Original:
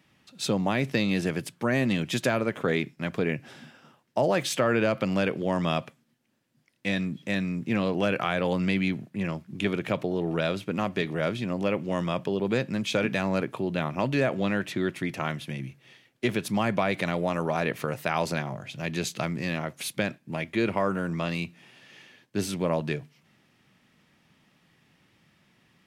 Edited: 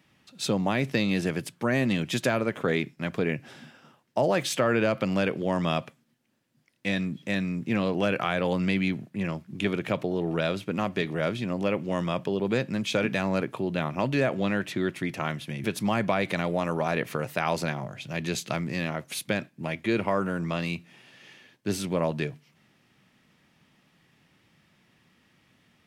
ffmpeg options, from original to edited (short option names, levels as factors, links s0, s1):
-filter_complex "[0:a]asplit=2[s0][s1];[s0]atrim=end=15.642[s2];[s1]atrim=start=16.328[s3];[s2][s3]acrossfade=d=0.004:c1=hsin:c2=hsin"